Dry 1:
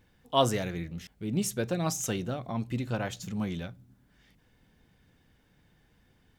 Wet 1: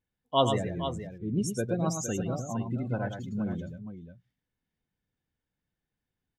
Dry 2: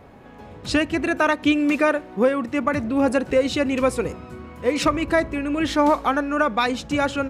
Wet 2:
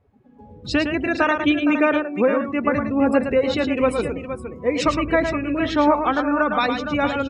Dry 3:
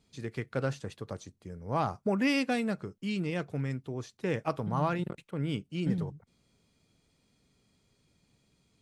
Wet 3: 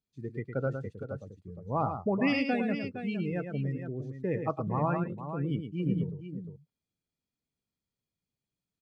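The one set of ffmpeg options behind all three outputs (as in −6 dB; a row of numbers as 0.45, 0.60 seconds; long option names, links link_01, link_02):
-af "afftdn=noise_reduction=23:noise_floor=-33,aecho=1:1:109|464:0.447|0.316"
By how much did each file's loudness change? +0.5, +1.0, +0.5 LU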